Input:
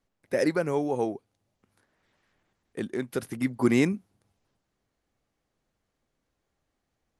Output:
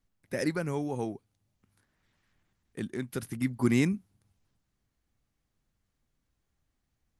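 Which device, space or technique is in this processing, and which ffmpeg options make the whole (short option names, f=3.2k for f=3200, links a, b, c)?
smiley-face EQ: -af "lowshelf=f=190:g=8,equalizer=f=520:t=o:w=1.6:g=-6.5,highshelf=f=7.6k:g=4.5,volume=-3dB"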